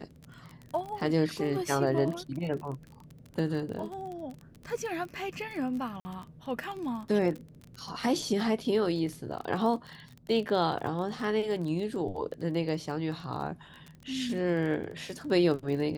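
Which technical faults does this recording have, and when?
crackle 27 per s -36 dBFS
6.00–6.05 s: dropout 50 ms

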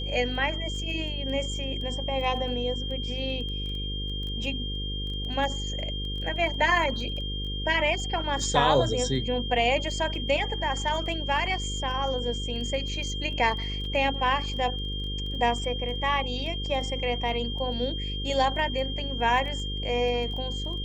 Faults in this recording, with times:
buzz 50 Hz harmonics 10 -33 dBFS
crackle 10 per s -35 dBFS
whine 3.2 kHz -34 dBFS
13.85 s: dropout 2.9 ms

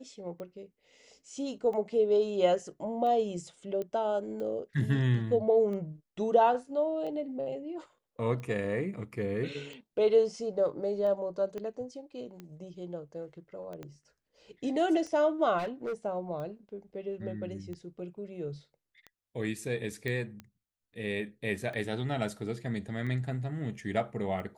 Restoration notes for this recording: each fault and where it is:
tick 45 rpm -30 dBFS
3.82 s: pop -25 dBFS
11.58 s: pop -27 dBFS
13.83 s: pop -29 dBFS
15.58–15.94 s: clipped -30.5 dBFS
20.08 s: pop -22 dBFS

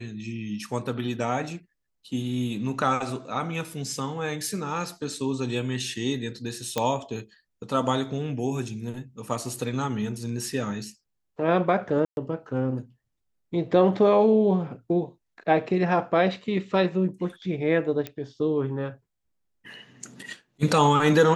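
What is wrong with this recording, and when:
6.78 s: pop -10 dBFS
12.05–12.17 s: dropout 121 ms
18.07 s: pop -17 dBFS

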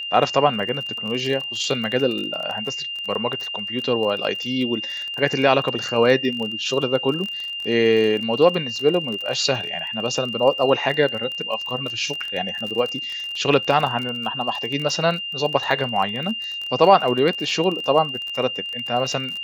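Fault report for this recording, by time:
crackle 27 per s -26 dBFS
whine 2.8 kHz -27 dBFS

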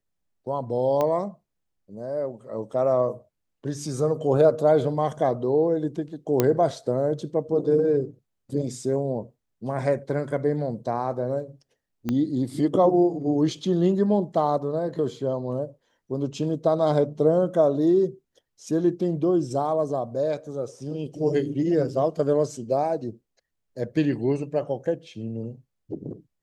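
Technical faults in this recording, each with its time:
1.01 s: pop -13 dBFS
6.40 s: pop -6 dBFS
12.09 s: pop -14 dBFS

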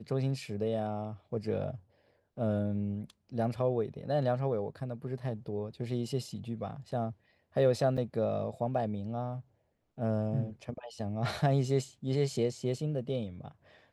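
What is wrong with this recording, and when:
7.97–7.98 s: dropout 6.7 ms

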